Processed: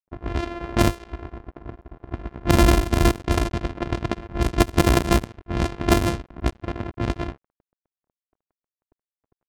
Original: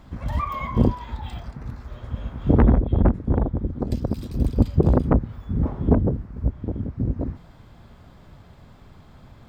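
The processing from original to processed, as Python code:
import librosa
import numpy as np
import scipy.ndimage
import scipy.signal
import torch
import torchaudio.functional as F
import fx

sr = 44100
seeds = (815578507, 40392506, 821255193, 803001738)

y = np.r_[np.sort(x[:len(x) // 128 * 128].reshape(-1, 128), axis=1).ravel(), x[len(x) // 128 * 128:]]
y = np.sign(y) * np.maximum(np.abs(y) - 10.0 ** (-38.0 / 20.0), 0.0)
y = fx.env_lowpass(y, sr, base_hz=1000.0, full_db=-15.0)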